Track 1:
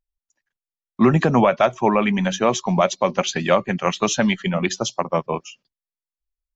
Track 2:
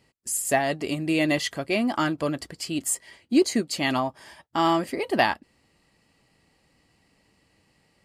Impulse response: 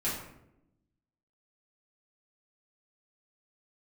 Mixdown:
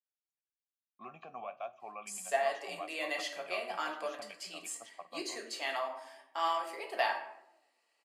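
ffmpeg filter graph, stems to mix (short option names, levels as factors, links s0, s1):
-filter_complex "[0:a]asplit=3[s0][s1][s2];[s0]bandpass=f=730:t=q:w=8,volume=1[s3];[s1]bandpass=f=1090:t=q:w=8,volume=0.501[s4];[s2]bandpass=f=2440:t=q:w=8,volume=0.355[s5];[s3][s4][s5]amix=inputs=3:normalize=0,equalizer=f=460:w=0.36:g=-10,volume=0.501,asplit=2[s6][s7];[s7]volume=0.0794[s8];[1:a]highpass=f=520:w=0.5412,highpass=f=520:w=1.3066,acrossover=split=7600[s9][s10];[s10]acompressor=threshold=0.00891:ratio=4:attack=1:release=60[s11];[s9][s11]amix=inputs=2:normalize=0,adelay=1800,volume=0.335,asplit=2[s12][s13];[s13]volume=0.562[s14];[2:a]atrim=start_sample=2205[s15];[s8][s14]amix=inputs=2:normalize=0[s16];[s16][s15]afir=irnorm=-1:irlink=0[s17];[s6][s12][s17]amix=inputs=3:normalize=0,flanger=delay=4.3:depth=6.7:regen=73:speed=0.42:shape=sinusoidal"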